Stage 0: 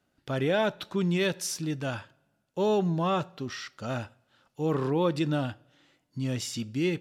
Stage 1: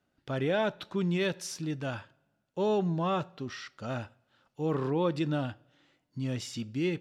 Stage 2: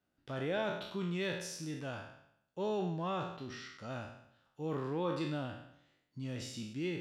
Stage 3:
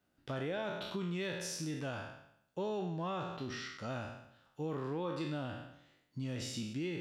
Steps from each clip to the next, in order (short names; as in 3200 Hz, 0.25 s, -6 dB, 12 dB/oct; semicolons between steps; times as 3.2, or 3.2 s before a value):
high shelf 8100 Hz -10.5 dB; gain -2.5 dB
spectral trails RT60 0.74 s; gain -8 dB
compressor 4:1, threshold -40 dBFS, peak gain reduction 8.5 dB; gain +4.5 dB